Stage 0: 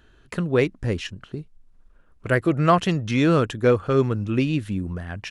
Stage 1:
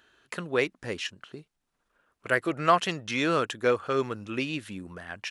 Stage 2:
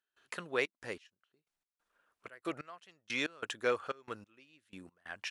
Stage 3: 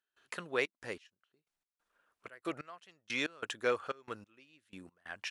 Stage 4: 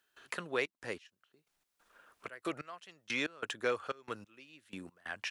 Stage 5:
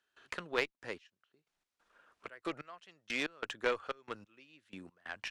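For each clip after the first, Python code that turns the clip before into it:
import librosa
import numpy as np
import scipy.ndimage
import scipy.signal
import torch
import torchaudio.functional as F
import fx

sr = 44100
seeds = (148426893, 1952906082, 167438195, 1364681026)

y1 = fx.highpass(x, sr, hz=820.0, slope=6)
y2 = fx.low_shelf(y1, sr, hz=310.0, db=-11.0)
y2 = fx.step_gate(y2, sr, bpm=92, pattern='.xxx.x...x', floor_db=-24.0, edge_ms=4.5)
y2 = y2 * librosa.db_to_amplitude(-4.5)
y3 = y2
y4 = fx.band_squash(y3, sr, depth_pct=40)
y4 = y4 * librosa.db_to_amplitude(1.0)
y5 = scipy.signal.sosfilt(scipy.signal.bessel(2, 6000.0, 'lowpass', norm='mag', fs=sr, output='sos'), y4)
y5 = fx.cheby_harmonics(y5, sr, harmonics=(2, 4, 7), levels_db=(-8, -26, -25), full_scale_db=-17.0)
y5 = y5 * librosa.db_to_amplitude(1.0)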